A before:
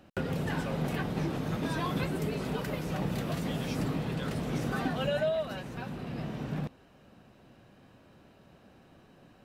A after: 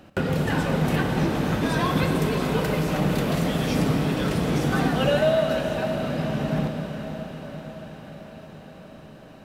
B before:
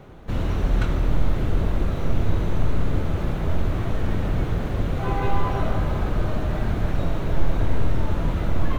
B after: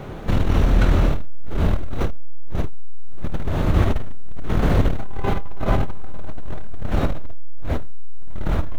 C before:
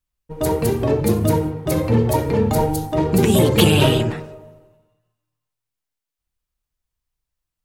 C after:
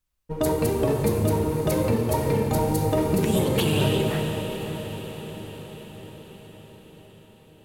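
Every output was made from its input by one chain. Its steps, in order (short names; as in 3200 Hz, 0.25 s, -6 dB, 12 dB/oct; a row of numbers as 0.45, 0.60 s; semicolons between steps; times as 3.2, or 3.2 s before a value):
notches 60/120 Hz; compressor 10:1, threshold -22 dBFS; on a send: diffused feedback echo 0.536 s, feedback 63%, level -9.5 dB; on the sum: Schroeder reverb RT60 2.4 s, combs from 29 ms, DRR 5.5 dB; core saturation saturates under 63 Hz; match loudness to -24 LUFS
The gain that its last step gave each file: +8.0, +11.0, +2.0 dB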